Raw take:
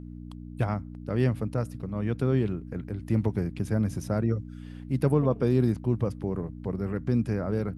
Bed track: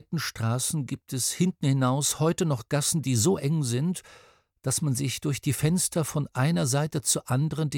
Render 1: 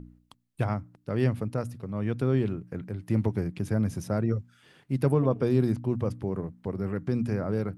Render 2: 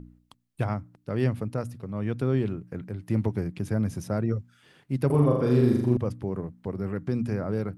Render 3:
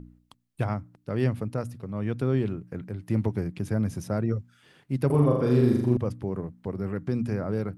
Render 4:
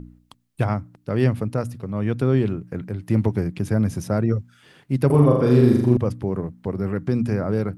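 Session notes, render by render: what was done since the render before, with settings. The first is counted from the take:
de-hum 60 Hz, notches 5
5.06–5.97 flutter echo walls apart 7 m, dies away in 0.84 s
nothing audible
gain +6 dB

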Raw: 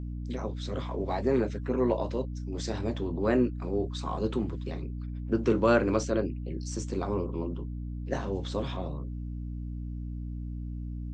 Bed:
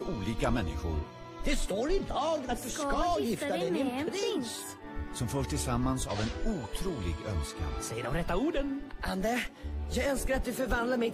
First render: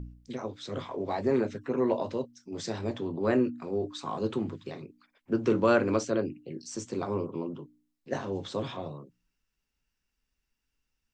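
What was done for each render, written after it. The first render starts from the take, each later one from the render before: de-hum 60 Hz, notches 5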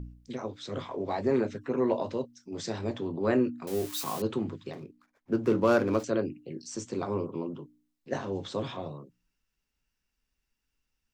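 3.67–4.22 switching spikes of -27.5 dBFS; 4.73–6.04 median filter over 15 samples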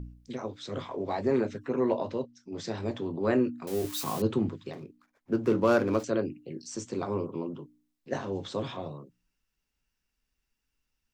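1.94–2.78 air absorption 60 m; 3.84–4.49 low shelf 280 Hz +7 dB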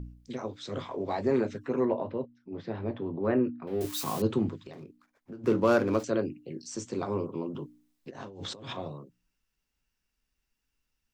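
1.85–3.81 air absorption 420 m; 4.66–5.44 compressor, threshold -40 dBFS; 7.52–8.73 negative-ratio compressor -42 dBFS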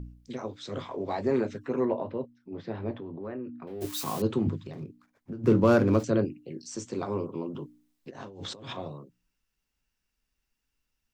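2.94–3.82 compressor 3:1, threshold -37 dBFS; 4.46–6.25 bell 120 Hz +10.5 dB 2.1 oct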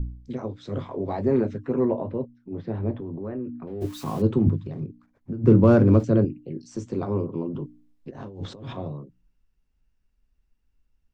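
tilt -3 dB/oct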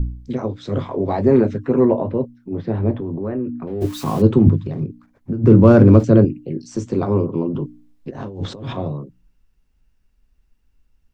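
maximiser +8 dB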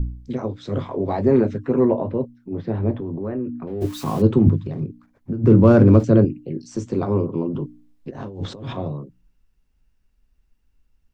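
gain -2.5 dB

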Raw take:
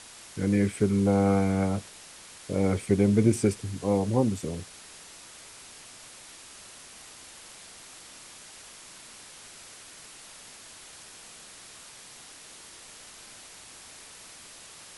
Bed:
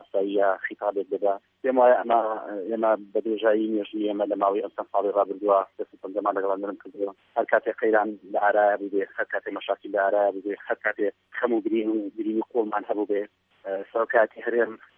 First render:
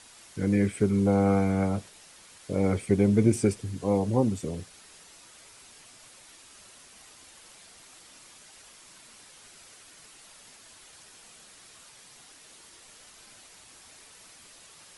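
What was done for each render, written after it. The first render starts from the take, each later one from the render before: denoiser 6 dB, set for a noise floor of -48 dBFS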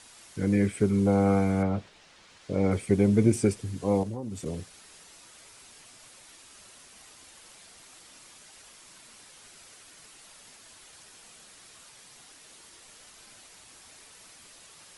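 1.62–2.7 LPF 3500 Hz -> 6400 Hz; 4.03–4.46 compressor 5:1, threshold -32 dBFS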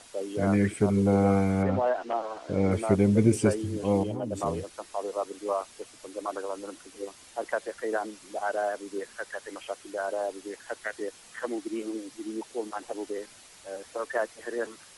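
add bed -9 dB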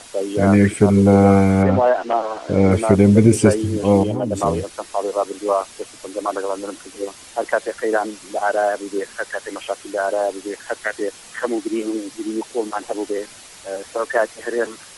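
gain +10.5 dB; limiter -1 dBFS, peak gain reduction 3 dB

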